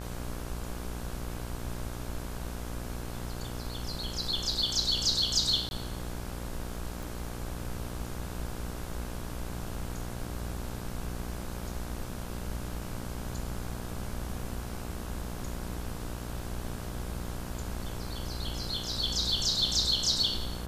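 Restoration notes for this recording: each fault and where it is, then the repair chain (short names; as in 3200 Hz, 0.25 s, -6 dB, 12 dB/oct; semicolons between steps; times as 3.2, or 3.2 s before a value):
buzz 60 Hz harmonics 28 -39 dBFS
5.69–5.71 gap 21 ms
7.03 pop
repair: de-click; de-hum 60 Hz, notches 28; interpolate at 5.69, 21 ms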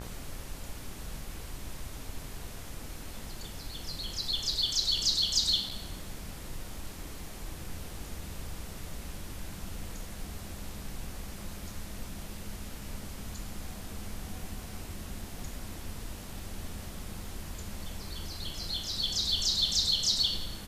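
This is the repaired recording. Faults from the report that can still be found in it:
none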